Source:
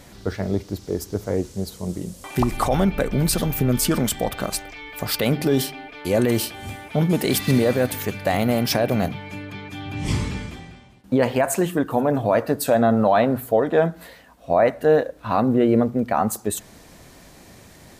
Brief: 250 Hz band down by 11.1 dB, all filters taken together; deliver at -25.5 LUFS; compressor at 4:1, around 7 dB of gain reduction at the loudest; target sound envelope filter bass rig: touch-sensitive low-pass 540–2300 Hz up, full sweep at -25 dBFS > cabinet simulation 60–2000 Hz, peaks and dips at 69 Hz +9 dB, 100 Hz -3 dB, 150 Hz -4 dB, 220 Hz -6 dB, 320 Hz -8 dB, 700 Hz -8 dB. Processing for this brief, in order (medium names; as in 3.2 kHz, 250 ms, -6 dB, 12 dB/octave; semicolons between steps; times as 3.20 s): peaking EQ 250 Hz -7.5 dB; compression 4:1, threshold -22 dBFS; touch-sensitive low-pass 540–2300 Hz up, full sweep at -25 dBFS; cabinet simulation 60–2000 Hz, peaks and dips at 69 Hz +9 dB, 100 Hz -3 dB, 150 Hz -4 dB, 220 Hz -6 dB, 320 Hz -8 dB, 700 Hz -8 dB; trim +4.5 dB